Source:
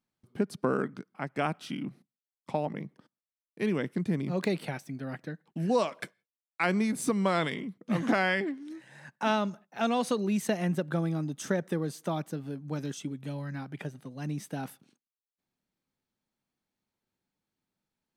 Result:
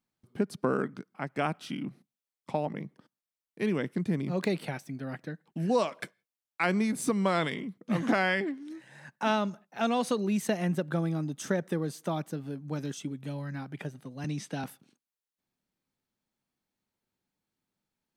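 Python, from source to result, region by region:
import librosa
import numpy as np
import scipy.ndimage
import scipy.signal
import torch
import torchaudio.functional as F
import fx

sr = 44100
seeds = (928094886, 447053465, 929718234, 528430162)

y = fx.chain(x, sr, fx.lowpass(hz=5700.0, slope=12),
    fx.high_shelf(hz=2500.0, db=8.5),
    fx.band_squash(depth_pct=40), at=(14.24, 14.64))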